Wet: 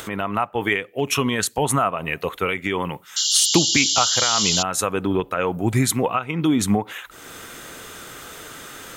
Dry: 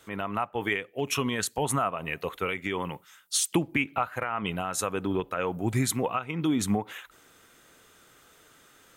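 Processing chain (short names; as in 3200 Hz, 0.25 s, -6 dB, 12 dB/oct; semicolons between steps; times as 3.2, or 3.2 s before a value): upward compressor, threshold -33 dBFS; painted sound noise, 3.16–4.63, 2800–7500 Hz -28 dBFS; gain +7 dB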